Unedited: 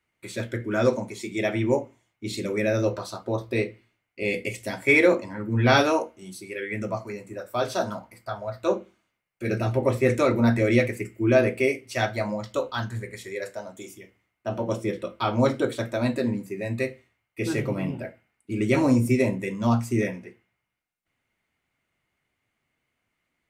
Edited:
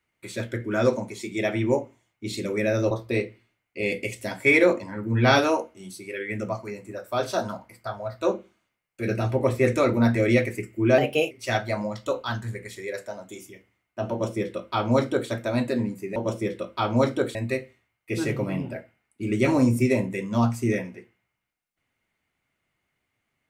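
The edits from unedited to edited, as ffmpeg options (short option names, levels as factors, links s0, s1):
-filter_complex "[0:a]asplit=6[s0][s1][s2][s3][s4][s5];[s0]atrim=end=2.912[s6];[s1]atrim=start=3.328:end=11.404[s7];[s2]atrim=start=11.4:end=11.79,asetpts=PTS-STARTPTS,asetrate=52038,aresample=44100,atrim=end_sample=14575,asetpts=PTS-STARTPTS[s8];[s3]atrim=start=11.786:end=16.642[s9];[s4]atrim=start=14.588:end=15.782[s10];[s5]atrim=start=16.638[s11];[s6][s7]acrossfade=d=0.004:c1=hsin:c2=hsin[s12];[s12][s8]acrossfade=d=0.004:c1=hsin:c2=hsin[s13];[s13][s9]acrossfade=d=0.004:c1=hsin:c2=hsin[s14];[s14][s10]acrossfade=d=0.004:c1=hsin:c2=hsin[s15];[s15][s11]acrossfade=d=0.004:c1=hsin:c2=hsin"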